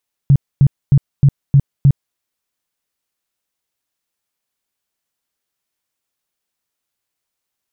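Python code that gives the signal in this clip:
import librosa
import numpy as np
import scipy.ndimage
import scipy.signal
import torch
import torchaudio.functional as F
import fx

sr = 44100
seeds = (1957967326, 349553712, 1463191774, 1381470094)

y = fx.tone_burst(sr, hz=139.0, cycles=8, every_s=0.31, bursts=6, level_db=-5.0)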